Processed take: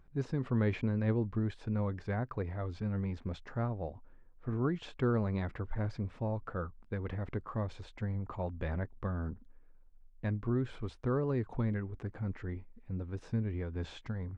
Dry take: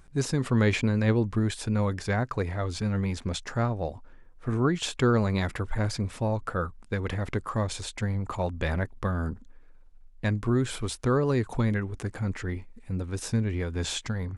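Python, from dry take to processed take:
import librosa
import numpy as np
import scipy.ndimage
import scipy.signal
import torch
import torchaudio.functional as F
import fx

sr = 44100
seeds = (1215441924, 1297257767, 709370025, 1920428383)

y = fx.spacing_loss(x, sr, db_at_10k=31)
y = y * librosa.db_to_amplitude(-6.5)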